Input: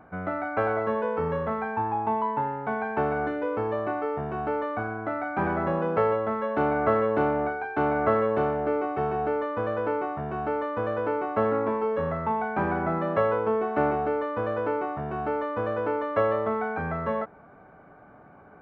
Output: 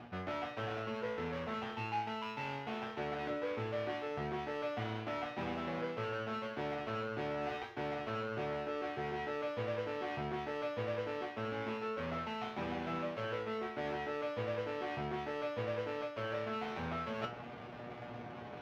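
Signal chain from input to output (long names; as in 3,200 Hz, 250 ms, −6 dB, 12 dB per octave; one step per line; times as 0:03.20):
gap after every zero crossing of 0.29 ms
high-pass filter 47 Hz
reversed playback
downward compressor 10 to 1, threshold −40 dBFS, peak gain reduction 22 dB
reversed playback
high-frequency loss of the air 280 metres
tuned comb filter 120 Hz, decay 0.26 s, harmonics all, mix 90%
level +16.5 dB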